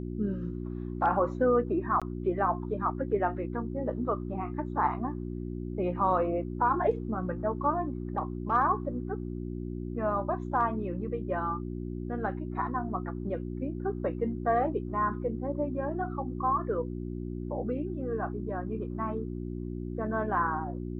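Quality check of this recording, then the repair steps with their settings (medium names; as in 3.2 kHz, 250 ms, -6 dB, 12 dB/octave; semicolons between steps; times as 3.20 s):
hum 60 Hz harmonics 6 -36 dBFS
2.00–2.02 s: dropout 16 ms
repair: de-hum 60 Hz, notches 6; interpolate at 2.00 s, 16 ms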